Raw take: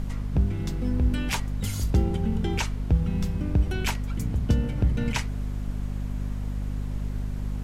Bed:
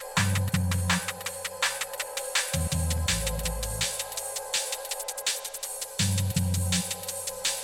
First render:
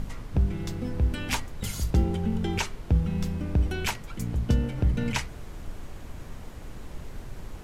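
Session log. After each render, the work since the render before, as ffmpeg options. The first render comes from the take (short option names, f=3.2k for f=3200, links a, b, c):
-af "bandreject=f=50:t=h:w=4,bandreject=f=100:t=h:w=4,bandreject=f=150:t=h:w=4,bandreject=f=200:t=h:w=4,bandreject=f=250:t=h:w=4,bandreject=f=300:t=h:w=4,bandreject=f=350:t=h:w=4,bandreject=f=400:t=h:w=4"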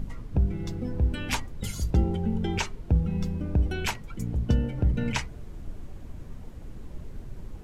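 -af "afftdn=nr=9:nf=-42"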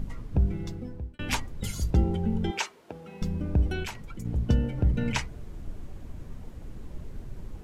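-filter_complex "[0:a]asettb=1/sr,asplit=3[a][b][c];[a]atrim=end=2.514[d];[b]atrim=start=2.51:end=3.22,asetpts=PTS-STARTPTS,afade=t=in:d=0.004:c=qsin,afade=t=out:st=0.706:d=0.004:c=qsin,highpass=500[e];[c]atrim=start=3.216[f];[d][e]acrossfade=d=0.004:c1=hsin:c2=qsin[g];[g][f]acrossfade=d=0.004:c1=qsin:c2=hsin,asettb=1/sr,asplit=3[h][i][j];[h]atrim=end=3.834[k];[i]atrim=start=3.83:end=4.25,asetpts=PTS-STARTPTS,afade=t=in:d=0.004:c=qsin,afade=t=out:st=0.416:d=0.004:c=qsin,acompressor=threshold=-35dB:ratio=2.5:attack=3.2:release=140:knee=1:detection=peak[l];[j]atrim=start=4.246[m];[k][l]acrossfade=d=0.004:c1=hsin:c2=qsin[n];[n][m]acrossfade=d=0.004:c1=qsin:c2=hsin,asplit=2[o][p];[o]atrim=end=1.19,asetpts=PTS-STARTPTS,afade=t=out:st=0.52:d=0.67[q];[p]atrim=start=1.19,asetpts=PTS-STARTPTS,afade=t=in:d=0.004:c=hsin[r];[q][r]concat=n=2:v=0:a=1"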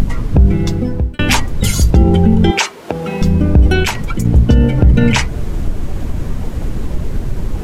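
-filter_complex "[0:a]asplit=2[a][b];[b]acompressor=mode=upward:threshold=-27dB:ratio=2.5,volume=2.5dB[c];[a][c]amix=inputs=2:normalize=0,alimiter=level_in=11.5dB:limit=-1dB:release=50:level=0:latency=1"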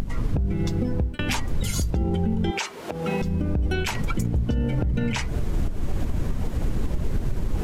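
-af "acompressor=threshold=-15dB:ratio=6,alimiter=limit=-15dB:level=0:latency=1:release=382"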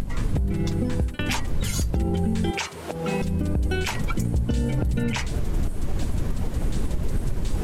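-filter_complex "[1:a]volume=-16.5dB[a];[0:a][a]amix=inputs=2:normalize=0"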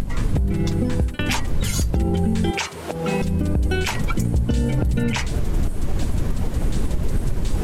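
-af "volume=3.5dB"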